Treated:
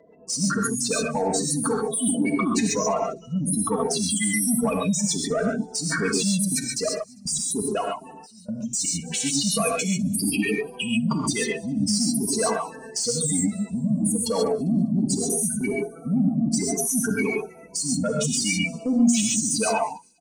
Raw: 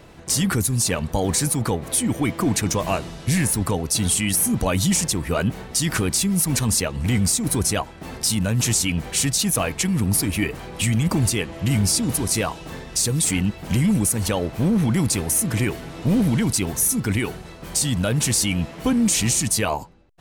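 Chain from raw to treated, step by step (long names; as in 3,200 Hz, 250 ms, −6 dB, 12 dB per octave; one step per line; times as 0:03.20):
gate on every frequency bin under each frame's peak −10 dB strong
meter weighting curve A
noise gate −36 dBFS, range −7 dB
parametric band 11,000 Hz −7.5 dB 0.33 octaves
comb filter 4.4 ms, depth 69%
brickwall limiter −22 dBFS, peak gain reduction 11.5 dB
soft clipping −21.5 dBFS, distortion −24 dB
0:06.47–0:08.93: gate pattern ".x.x.x...x" 122 BPM −24 dB
delay with a high-pass on its return 199 ms, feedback 34%, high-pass 4,500 Hz, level −20 dB
reverb whose tail is shaped and stops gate 160 ms rising, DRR −0.5 dB
level +5.5 dB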